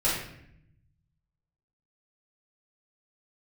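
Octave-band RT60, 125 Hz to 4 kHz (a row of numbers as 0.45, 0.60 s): 1.8, 1.2, 0.75, 0.65, 0.75, 0.55 s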